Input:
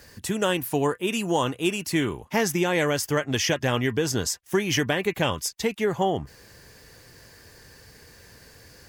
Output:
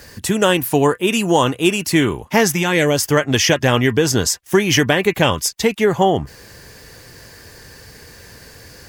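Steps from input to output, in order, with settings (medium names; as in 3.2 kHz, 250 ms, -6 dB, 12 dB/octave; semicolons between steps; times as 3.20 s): 2.51–2.97 s: peaking EQ 240 Hz -> 2 kHz -12 dB 0.67 oct; trim +9 dB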